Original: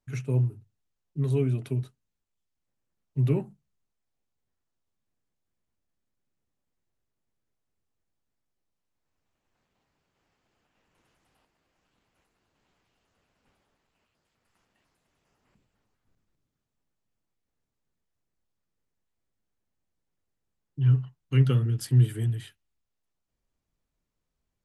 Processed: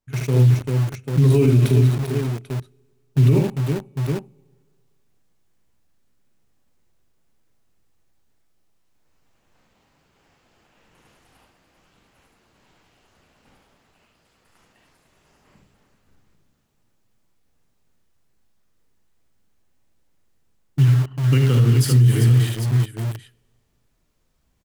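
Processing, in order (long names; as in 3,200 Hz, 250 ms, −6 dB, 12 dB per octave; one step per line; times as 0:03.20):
multi-tap delay 42/59/74/393/791 ms −9.5/−16.5/−5/−11/−14.5 dB
automatic gain control gain up to 12 dB
on a send at −21 dB: convolution reverb RT60 2.0 s, pre-delay 3 ms
0:20.84–0:21.60: on the sum: downward compressor 20 to 1, threshold −16 dBFS, peak gain reduction 11.5 dB
in parallel at −3.5 dB: bit reduction 5 bits
on the sum: brickwall limiter −8 dBFS, peak gain reduction 11 dB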